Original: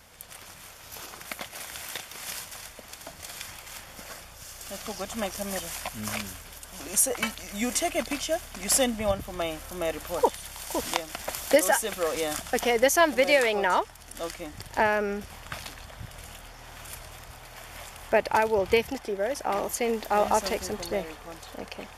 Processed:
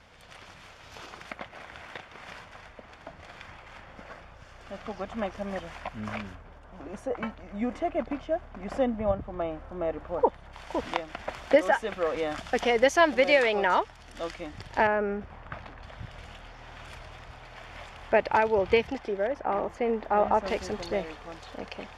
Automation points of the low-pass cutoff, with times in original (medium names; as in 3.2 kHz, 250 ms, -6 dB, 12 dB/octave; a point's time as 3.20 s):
3.6 kHz
from 1.31 s 2 kHz
from 6.35 s 1.2 kHz
from 10.53 s 2.4 kHz
from 12.38 s 4 kHz
from 14.87 s 1.6 kHz
from 15.83 s 3.4 kHz
from 19.27 s 1.7 kHz
from 20.48 s 4.4 kHz